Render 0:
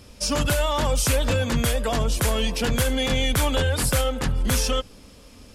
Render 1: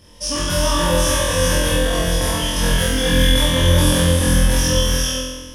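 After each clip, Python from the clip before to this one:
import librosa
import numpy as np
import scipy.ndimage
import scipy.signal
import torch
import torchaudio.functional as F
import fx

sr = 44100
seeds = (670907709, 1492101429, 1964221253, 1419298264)

y = fx.ripple_eq(x, sr, per_octave=1.2, db=9)
y = fx.room_flutter(y, sr, wall_m=4.0, rt60_s=1.2)
y = fx.rev_gated(y, sr, seeds[0], gate_ms=460, shape='rising', drr_db=0.5)
y = y * 10.0 ** (-4.0 / 20.0)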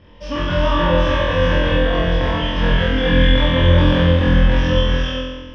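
y = scipy.signal.sosfilt(scipy.signal.butter(4, 3000.0, 'lowpass', fs=sr, output='sos'), x)
y = y * 10.0 ** (2.0 / 20.0)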